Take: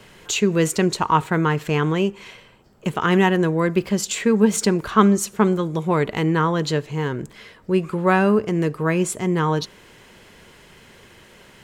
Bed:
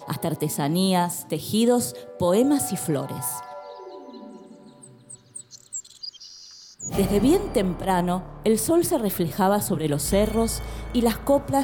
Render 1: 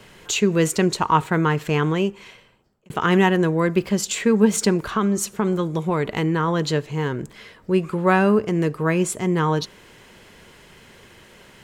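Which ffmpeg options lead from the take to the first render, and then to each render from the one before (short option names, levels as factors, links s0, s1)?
-filter_complex "[0:a]asettb=1/sr,asplit=3[s0][s1][s2];[s0]atrim=end=4.844[s3];[s1]atrim=start=4.84:end=6.48,asetpts=PTS-STARTPTS,afade=t=in:d=0.004:c=qsin,afade=t=out:st=1.636:d=0.004:c=qsin,acompressor=threshold=0.158:ratio=6:attack=3.2:release=140:knee=1:detection=peak[s4];[s2]atrim=start=6.476[s5];[s3][s4]acrossfade=d=0.004:c1=hsin:c2=qsin[s6];[s6][s5]acrossfade=d=0.004:c1=qsin:c2=hsin,asplit=2[s7][s8];[s7]atrim=end=2.9,asetpts=PTS-STARTPTS,afade=t=out:st=1.66:d=1.24:c=qsin[s9];[s8]atrim=start=2.9,asetpts=PTS-STARTPTS,afade=t=in:d=0.004:c=hsin[s10];[s9][s10]concat=n=2:v=0:a=1"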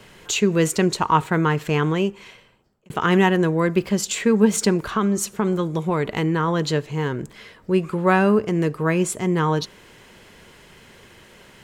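-af anull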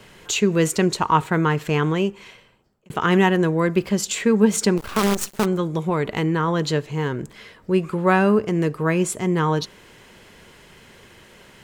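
-filter_complex "[0:a]asplit=3[s0][s1][s2];[s0]afade=t=out:st=4.77:d=0.02[s3];[s1]acrusher=bits=4:dc=4:mix=0:aa=0.000001,afade=t=in:st=4.77:d=0.02,afade=t=out:st=5.44:d=0.02[s4];[s2]afade=t=in:st=5.44:d=0.02[s5];[s3][s4][s5]amix=inputs=3:normalize=0"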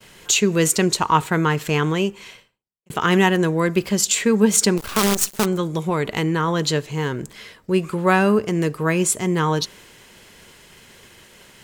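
-af "agate=range=0.0224:threshold=0.00562:ratio=3:detection=peak,highshelf=f=3400:g=9"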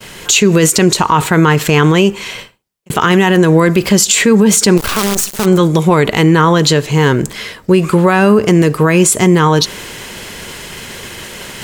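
-af "areverse,acompressor=mode=upward:threshold=0.0158:ratio=2.5,areverse,alimiter=level_in=5.31:limit=0.891:release=50:level=0:latency=1"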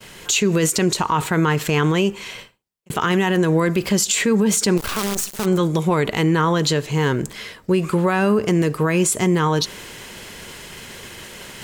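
-af "volume=0.376"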